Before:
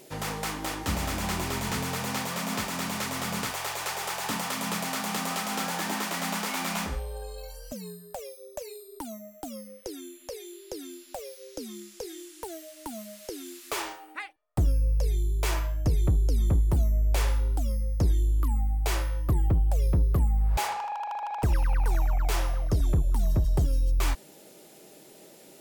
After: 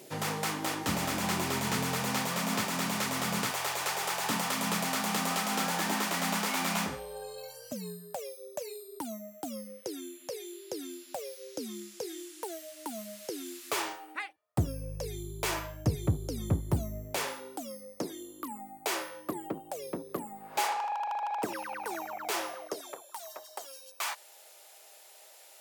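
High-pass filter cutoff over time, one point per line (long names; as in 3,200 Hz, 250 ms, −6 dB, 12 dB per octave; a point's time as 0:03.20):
high-pass filter 24 dB per octave
0:12.01 110 Hz
0:12.60 380 Hz
0:13.54 89 Hz
0:16.97 89 Hz
0:17.37 250 Hz
0:22.48 250 Hz
0:23.06 680 Hz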